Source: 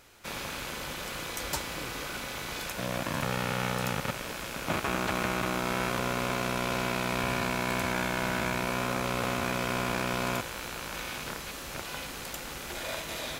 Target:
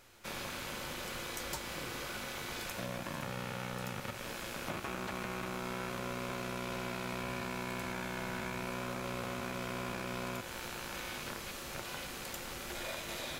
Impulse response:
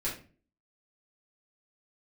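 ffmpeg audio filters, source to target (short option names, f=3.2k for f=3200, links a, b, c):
-filter_complex "[0:a]acompressor=threshold=-32dB:ratio=6,asplit=2[a][b];[1:a]atrim=start_sample=2205[c];[b][c]afir=irnorm=-1:irlink=0,volume=-12dB[d];[a][d]amix=inputs=2:normalize=0,volume=-5.5dB"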